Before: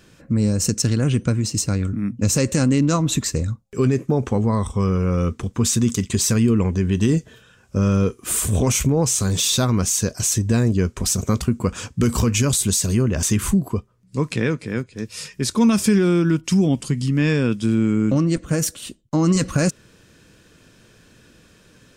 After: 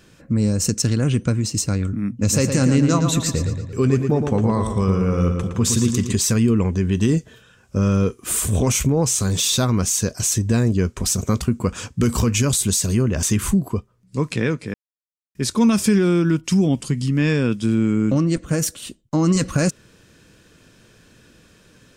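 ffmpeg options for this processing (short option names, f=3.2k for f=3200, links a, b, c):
-filter_complex "[0:a]asettb=1/sr,asplit=3[a][b][c];[a]atrim=end=2.094[d];[b]atrim=start=2.09:end=6.13,asetpts=PTS-STARTPTS,afade=t=in:d=0.004:c=qsin,afade=t=out:st=4.036:d=0.004:c=qsin,asplit=2[e][f];[f]adelay=114,lowpass=f=4.9k:p=1,volume=-6dB,asplit=2[g][h];[h]adelay=114,lowpass=f=4.9k:p=1,volume=0.53,asplit=2[i][j];[j]adelay=114,lowpass=f=4.9k:p=1,volume=0.53,asplit=2[k][l];[l]adelay=114,lowpass=f=4.9k:p=1,volume=0.53,asplit=2[m][n];[n]adelay=114,lowpass=f=4.9k:p=1,volume=0.53,asplit=2[o][p];[p]adelay=114,lowpass=f=4.9k:p=1,volume=0.53,asplit=2[q][r];[r]adelay=114,lowpass=f=4.9k:p=1,volume=0.53[s];[e][g][i][k][m][o][q][s]amix=inputs=8:normalize=0,atrim=end_sample=178164[t];[c]atrim=start=6.126[u];[d][t]acrossfade=d=0.004:c1=hsin:c2=qsin[v];[v][u]acrossfade=d=0.004:c1=qsin:c2=hsin,asplit=3[w][x][y];[w]atrim=end=14.74,asetpts=PTS-STARTPTS,afade=t=out:st=14.736:d=0.004:c=hsin[z];[x]atrim=start=14.74:end=15.35,asetpts=PTS-STARTPTS,volume=0[aa];[y]atrim=start=15.35,asetpts=PTS-STARTPTS,afade=t=in:d=0.004:c=hsin[ab];[z][aa][ab]concat=n=3:v=0:a=1"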